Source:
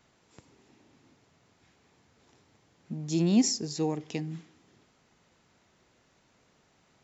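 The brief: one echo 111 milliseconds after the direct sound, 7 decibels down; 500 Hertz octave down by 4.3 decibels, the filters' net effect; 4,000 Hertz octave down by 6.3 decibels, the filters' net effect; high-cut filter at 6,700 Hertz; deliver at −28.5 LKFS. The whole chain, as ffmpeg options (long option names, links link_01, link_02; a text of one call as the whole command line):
ffmpeg -i in.wav -af "lowpass=6700,equalizer=frequency=500:width_type=o:gain=-6,equalizer=frequency=4000:width_type=o:gain=-8,aecho=1:1:111:0.447,volume=2dB" out.wav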